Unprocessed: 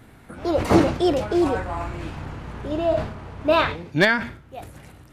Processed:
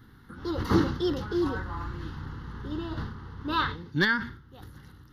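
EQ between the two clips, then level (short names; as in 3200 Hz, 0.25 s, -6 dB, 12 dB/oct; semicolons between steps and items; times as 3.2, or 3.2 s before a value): fixed phaser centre 2400 Hz, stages 6; -3.5 dB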